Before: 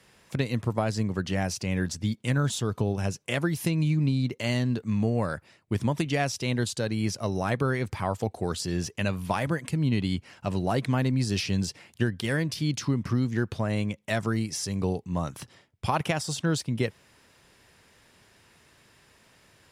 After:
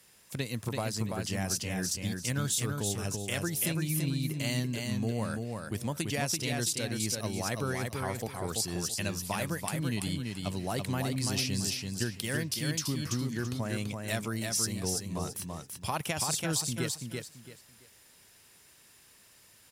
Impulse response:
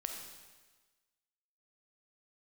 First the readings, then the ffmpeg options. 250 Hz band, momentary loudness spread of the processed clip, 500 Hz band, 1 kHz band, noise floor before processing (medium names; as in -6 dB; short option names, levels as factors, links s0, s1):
-6.0 dB, 6 LU, -6.0 dB, -5.5 dB, -61 dBFS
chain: -af "aemphasis=mode=production:type=75fm,aecho=1:1:335|670|1005:0.631|0.158|0.0394,volume=0.447"